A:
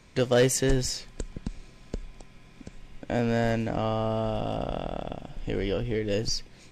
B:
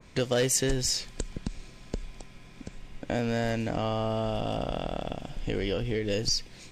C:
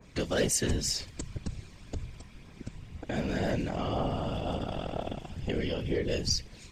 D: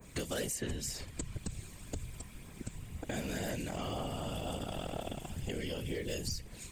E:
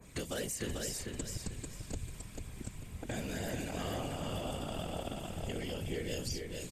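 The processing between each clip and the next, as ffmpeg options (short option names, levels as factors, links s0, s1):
-af "acompressor=threshold=0.0316:ratio=2,adynamicequalizer=threshold=0.00282:dfrequency=2200:dqfactor=0.7:tfrequency=2200:tqfactor=0.7:attack=5:release=100:ratio=0.375:range=2.5:mode=boostabove:tftype=highshelf,volume=1.26"
-af "aphaser=in_gain=1:out_gain=1:delay=1.1:decay=0.28:speed=2:type=triangular,afftfilt=real='hypot(re,im)*cos(2*PI*random(0))':imag='hypot(re,im)*sin(2*PI*random(1))':win_size=512:overlap=0.75,volume=1.41"
-filter_complex "[0:a]aexciter=amount=5.3:drive=6:freq=7500,acrossover=split=2000|4600[s0][s1][s2];[s0]acompressor=threshold=0.0158:ratio=4[s3];[s1]acompressor=threshold=0.00447:ratio=4[s4];[s2]acompressor=threshold=0.00562:ratio=4[s5];[s3][s4][s5]amix=inputs=3:normalize=0"
-af "aecho=1:1:443|886|1329|1772:0.631|0.189|0.0568|0.017,aresample=32000,aresample=44100,volume=0.841"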